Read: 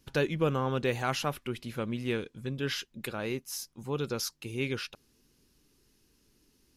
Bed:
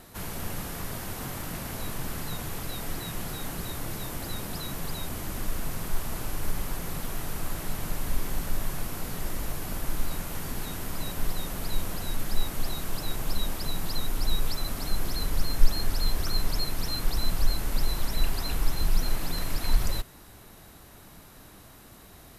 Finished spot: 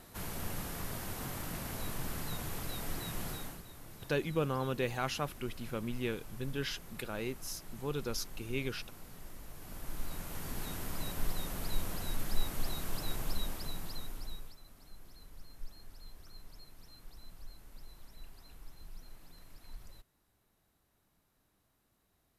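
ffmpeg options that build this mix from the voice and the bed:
-filter_complex "[0:a]adelay=3950,volume=-4.5dB[a];[1:a]volume=6.5dB,afade=t=out:st=3.3:d=0.33:silence=0.251189,afade=t=in:st=9.5:d=1.19:silence=0.266073,afade=t=out:st=13.13:d=1.43:silence=0.1[b];[a][b]amix=inputs=2:normalize=0"

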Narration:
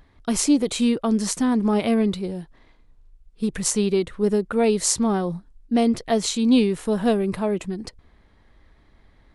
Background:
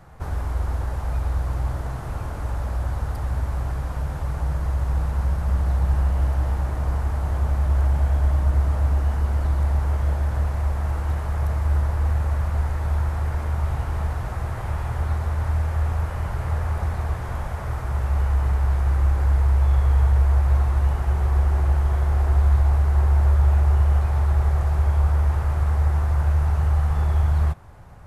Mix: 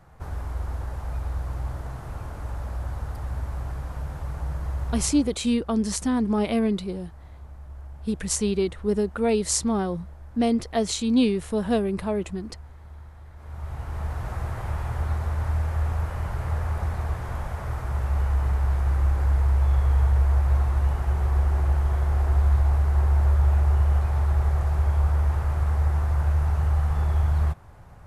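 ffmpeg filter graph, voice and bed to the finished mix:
-filter_complex "[0:a]adelay=4650,volume=-3dB[a];[1:a]volume=13dB,afade=t=out:st=4.87:d=0.49:silence=0.16788,afade=t=in:st=13.35:d=0.97:silence=0.11885[b];[a][b]amix=inputs=2:normalize=0"

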